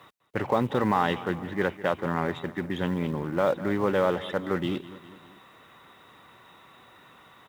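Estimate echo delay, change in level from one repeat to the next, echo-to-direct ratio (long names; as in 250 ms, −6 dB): 202 ms, −5.0 dB, −15.0 dB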